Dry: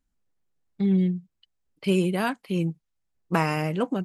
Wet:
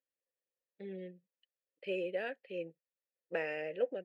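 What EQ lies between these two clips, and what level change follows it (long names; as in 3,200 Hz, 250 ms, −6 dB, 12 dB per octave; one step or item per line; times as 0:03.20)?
formant filter e
bass and treble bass −7 dB, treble −5 dB
+1.5 dB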